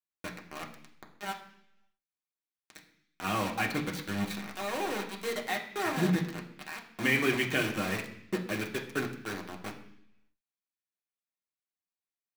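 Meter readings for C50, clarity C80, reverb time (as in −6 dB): 9.5 dB, 12.5 dB, 0.70 s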